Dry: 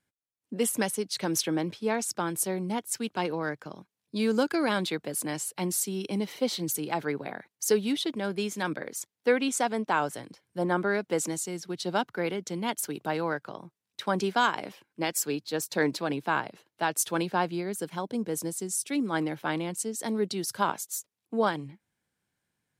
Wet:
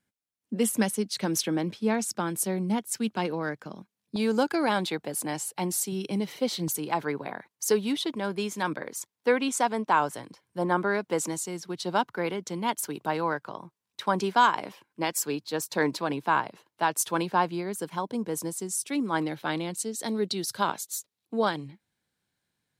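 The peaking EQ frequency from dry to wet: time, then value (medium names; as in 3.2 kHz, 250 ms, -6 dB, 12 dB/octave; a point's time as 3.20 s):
peaking EQ +7 dB 0.42 oct
210 Hz
from 4.16 s 830 Hz
from 5.92 s 150 Hz
from 6.68 s 1 kHz
from 19.22 s 4 kHz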